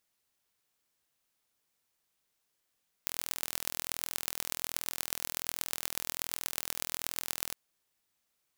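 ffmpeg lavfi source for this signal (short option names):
-f lavfi -i "aevalsrc='0.668*eq(mod(n,1068),0)*(0.5+0.5*eq(mod(n,5340),0))':d=4.48:s=44100"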